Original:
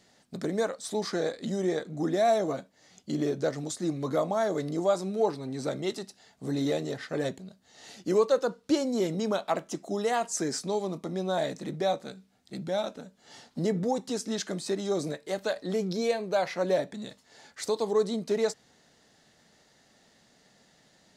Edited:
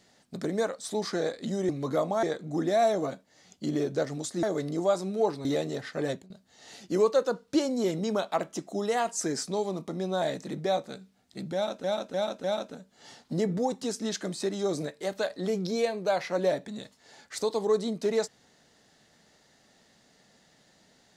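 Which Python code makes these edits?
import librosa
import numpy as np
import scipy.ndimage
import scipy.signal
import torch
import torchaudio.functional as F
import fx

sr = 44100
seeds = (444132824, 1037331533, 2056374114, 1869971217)

y = fx.edit(x, sr, fx.move(start_s=3.89, length_s=0.54, to_s=1.69),
    fx.cut(start_s=5.45, length_s=1.16),
    fx.fade_out_to(start_s=7.21, length_s=0.25, curve='qsin', floor_db=-16.5),
    fx.repeat(start_s=12.7, length_s=0.3, count=4), tone=tone)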